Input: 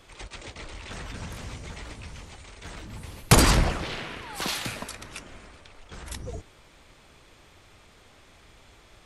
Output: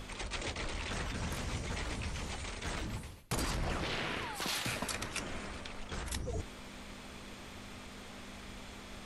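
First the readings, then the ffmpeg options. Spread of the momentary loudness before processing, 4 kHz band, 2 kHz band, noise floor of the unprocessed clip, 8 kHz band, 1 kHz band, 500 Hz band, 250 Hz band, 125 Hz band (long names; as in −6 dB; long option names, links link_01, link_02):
22 LU, −7.5 dB, −6.5 dB, −55 dBFS, −10.5 dB, −9.0 dB, −8.5 dB, −9.5 dB, −10.5 dB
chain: -af "aeval=exprs='val(0)+0.00398*(sin(2*PI*50*n/s)+sin(2*PI*2*50*n/s)/2+sin(2*PI*3*50*n/s)/3+sin(2*PI*4*50*n/s)/4+sin(2*PI*5*50*n/s)/5)':channel_layout=same,areverse,acompressor=threshold=-39dB:ratio=8,areverse,bandreject=frequency=50:width_type=h:width=6,bandreject=frequency=100:width_type=h:width=6,bandreject=frequency=150:width_type=h:width=6,volume=5.5dB"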